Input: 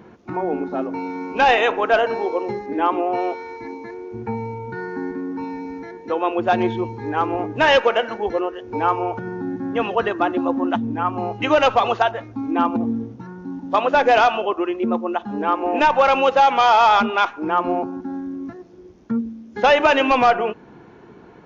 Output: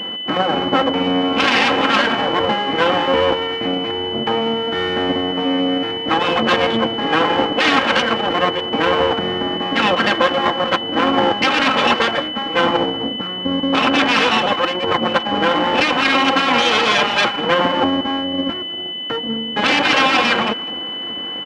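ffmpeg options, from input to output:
-filter_complex "[0:a]afftfilt=real='re*lt(hypot(re,im),0.398)':imag='im*lt(hypot(re,im),0.398)':win_size=1024:overlap=0.75,acrossover=split=170 3600:gain=0.0708 1 0.0708[s0][s1][s2];[s0][s1][s2]amix=inputs=3:normalize=0,aecho=1:1:3.8:0.79,asplit=2[s3][s4];[s4]adelay=200,highpass=300,lowpass=3400,asoftclip=type=hard:threshold=0.112,volume=0.112[s5];[s3][s5]amix=inputs=2:normalize=0,aeval=exprs='max(val(0),0)':c=same,aeval=exprs='val(0)+0.0112*sin(2*PI*3000*n/s)':c=same,highpass=120,lowpass=5600,asplit=2[s6][s7];[s7]asetrate=29433,aresample=44100,atempo=1.49831,volume=0.141[s8];[s6][s8]amix=inputs=2:normalize=0,alimiter=level_in=6.31:limit=0.891:release=50:level=0:latency=1,volume=0.891"

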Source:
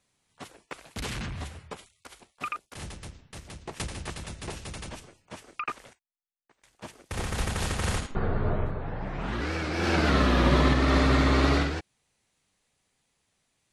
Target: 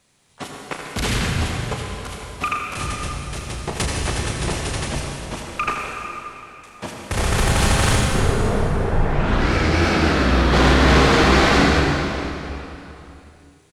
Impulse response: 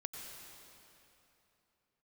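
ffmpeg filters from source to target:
-filter_complex "[0:a]asplit=3[s0][s1][s2];[s0]afade=t=out:st=7.94:d=0.02[s3];[s1]acompressor=threshold=0.0447:ratio=6,afade=t=in:st=7.94:d=0.02,afade=t=out:st=10.52:d=0.02[s4];[s2]afade=t=in:st=10.52:d=0.02[s5];[s3][s4][s5]amix=inputs=3:normalize=0,aeval=exprs='0.335*sin(PI/2*3.55*val(0)/0.335)':c=same,aecho=1:1:35|78:0.335|0.335[s6];[1:a]atrim=start_sample=2205[s7];[s6][s7]afir=irnorm=-1:irlink=0"

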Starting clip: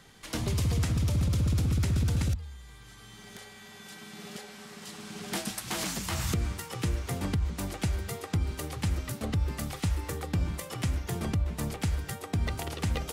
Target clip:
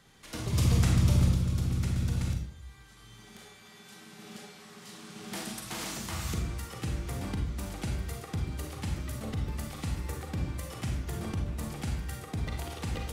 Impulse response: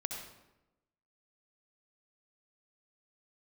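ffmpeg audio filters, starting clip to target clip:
-filter_complex "[0:a]asettb=1/sr,asplit=3[s0][s1][s2];[s0]atrim=end=0.534[s3];[s1]atrim=start=0.53:end=1.29,asetpts=PTS-STARTPTS,afade=t=in:d=0.004:c=qsin,afade=t=out:st=0.756:d=0.004:c=qsin,acontrast=71[s4];[s2]atrim=start=1.286[s5];[s3][s4]acrossfade=d=0.004:c1=hsin:c2=qsin[s6];[s6][s5]acrossfade=d=0.004:c1=qsin:c2=hsin[s7];[1:a]atrim=start_sample=2205,asetrate=74970,aresample=44100[s8];[s7][s8]afir=irnorm=-1:irlink=0"

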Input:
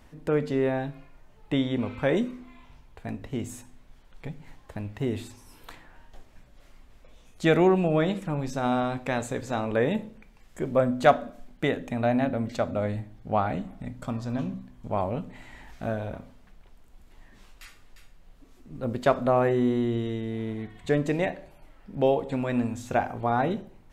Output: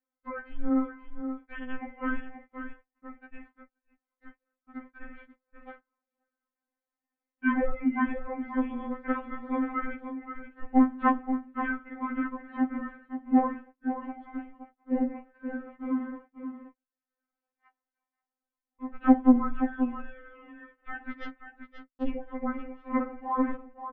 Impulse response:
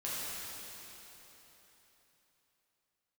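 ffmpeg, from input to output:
-filter_complex "[0:a]highpass=f=480:t=q:w=0.5412,highpass=f=480:t=q:w=1.307,lowpass=f=2400:t=q:w=0.5176,lowpass=f=2400:t=q:w=0.7071,lowpass=f=2400:t=q:w=1.932,afreqshift=-390,asettb=1/sr,asplit=3[s0][s1][s2];[s0]atrim=end=21.114[s3];[s1]atrim=start=21.11:end=22.11,asetpts=PTS-STARTPTS,afade=t=in:d=0.004:c=qsin,afade=t=out:st=0.996:d=0.004:c=qsin,aeval=exprs='0.178*(cos(1*acos(clip(val(0)/0.178,-1,1)))-cos(1*PI/2))+0.0562*(cos(3*acos(clip(val(0)/0.178,-1,1)))-cos(3*PI/2))+0.00251*(cos(5*acos(clip(val(0)/0.178,-1,1)))-cos(5*PI/2))+0.00447*(cos(6*acos(clip(val(0)/0.178,-1,1)))-cos(6*PI/2))+0.002*(cos(8*acos(clip(val(0)/0.178,-1,1)))-cos(8*PI/2))':c=same[s4];[s2]atrim=start=22.106[s5];[s3][s4]acrossfade=d=0.004:c1=hsin:c2=qsin[s6];[s6][s5]acrossfade=d=0.004:c1=qsin:c2=hsin,aecho=1:1:528:0.355,agate=range=0.0316:threshold=0.00398:ratio=16:detection=peak,afftfilt=real='re*3.46*eq(mod(b,12),0)':imag='im*3.46*eq(mod(b,12),0)':win_size=2048:overlap=0.75,volume=1.5"

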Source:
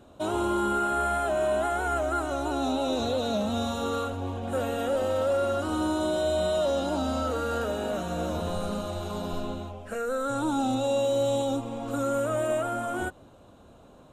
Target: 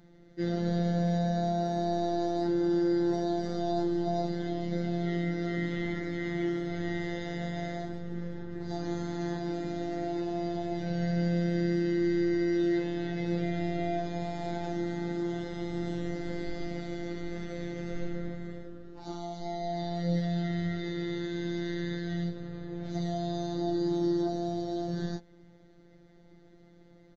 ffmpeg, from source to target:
-af "asetrate=22932,aresample=44100,afftfilt=real='hypot(re,im)*cos(PI*b)':imag='0':win_size=1024:overlap=0.75"

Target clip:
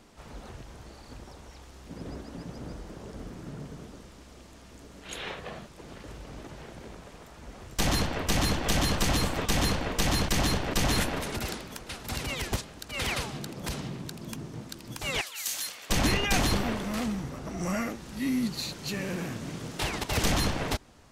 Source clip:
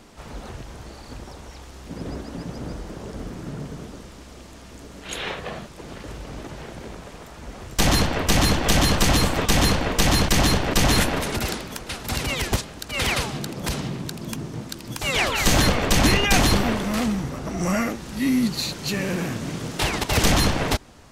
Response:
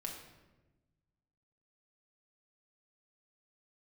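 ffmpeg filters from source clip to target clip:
-filter_complex "[0:a]asettb=1/sr,asplit=3[s0][s1][s2];[s0]atrim=end=15.214[s3];[s1]atrim=start=15.21:end=15.9,asetpts=PTS-STARTPTS,afade=t=in:d=0.004:c=qsin,afade=t=out:st=0.686:d=0.004:c=qsin,aderivative[s4];[s2]atrim=start=15.896[s5];[s3][s4]acrossfade=d=0.004:c1=hsin:c2=qsin[s6];[s6][s5]acrossfade=d=0.004:c1=qsin:c2=hsin,volume=0.422"

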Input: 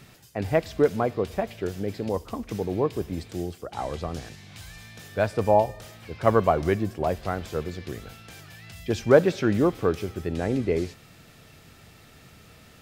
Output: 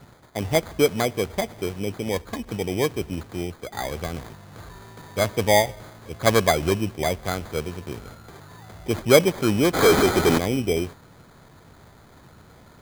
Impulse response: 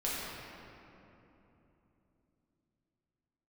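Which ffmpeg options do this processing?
-filter_complex "[0:a]asplit=3[s0][s1][s2];[s0]afade=t=out:st=9.73:d=0.02[s3];[s1]asplit=2[s4][s5];[s5]highpass=f=720:p=1,volume=35.5,asoftclip=type=tanh:threshold=0.355[s6];[s4][s6]amix=inputs=2:normalize=0,lowpass=f=7200:p=1,volume=0.501,afade=t=in:st=9.73:d=0.02,afade=t=out:st=10.37:d=0.02[s7];[s2]afade=t=in:st=10.37:d=0.02[s8];[s3][s7][s8]amix=inputs=3:normalize=0,acrusher=samples=16:mix=1:aa=0.000001,volume=1.19"

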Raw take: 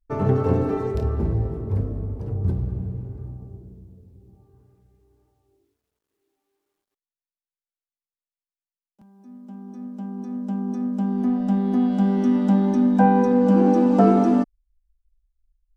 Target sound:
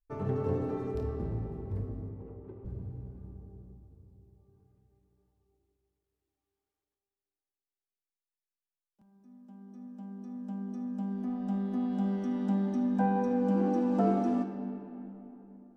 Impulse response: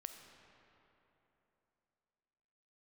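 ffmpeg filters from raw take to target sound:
-filter_complex "[0:a]asettb=1/sr,asplit=3[s0][s1][s2];[s0]atrim=end=2.094[s3];[s1]atrim=start=2.09:end=2.65,asetpts=PTS-STARTPTS,afade=t=in:d=0.004:c=qsin,afade=t=out:st=0.556:d=0.004:c=qsin,highpass=f=340:w=0.5412,highpass=f=340:w=1.3066,equalizer=f=380:t=q:w=4:g=4,equalizer=f=670:t=q:w=4:g=-7,equalizer=f=1600:t=q:w=4:g=-7,lowpass=f=2400:w=0.5412,lowpass=f=2400:w=1.3066[s4];[s2]atrim=start=2.646[s5];[s3][s4]acrossfade=d=0.004:c1=hsin:c2=qsin[s6];[s6][s5]acrossfade=d=0.004:c1=qsin:c2=hsin[s7];[1:a]atrim=start_sample=2205[s8];[s7][s8]afir=irnorm=-1:irlink=0,volume=0.447"

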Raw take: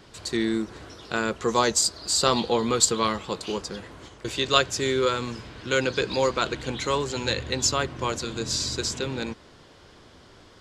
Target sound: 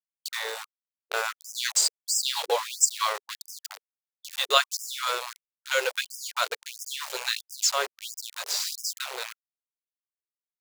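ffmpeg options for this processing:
-af "aeval=exprs='val(0)*gte(abs(val(0)),0.0447)':c=same,afftfilt=real='re*gte(b*sr/1024,380*pow(5000/380,0.5+0.5*sin(2*PI*1.5*pts/sr)))':imag='im*gte(b*sr/1024,380*pow(5000/380,0.5+0.5*sin(2*PI*1.5*pts/sr)))':win_size=1024:overlap=0.75"

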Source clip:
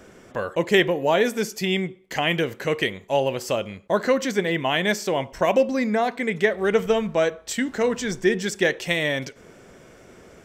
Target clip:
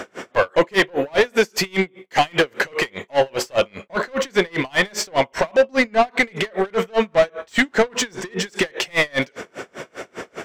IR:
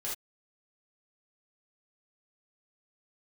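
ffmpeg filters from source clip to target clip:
-filter_complex "[0:a]acompressor=threshold=0.0447:ratio=2,asplit=2[s0][s1];[s1]highpass=f=720:p=1,volume=35.5,asoftclip=type=tanh:threshold=0.75[s2];[s0][s2]amix=inputs=2:normalize=0,lowpass=f=2800:p=1,volume=0.501,aeval=exprs='val(0)*pow(10,-34*(0.5-0.5*cos(2*PI*5*n/s))/20)':c=same"

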